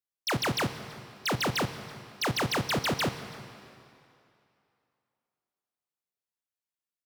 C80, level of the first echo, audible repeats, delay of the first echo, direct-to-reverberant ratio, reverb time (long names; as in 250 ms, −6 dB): 11.5 dB, −22.5 dB, 2, 330 ms, 10.5 dB, 2.7 s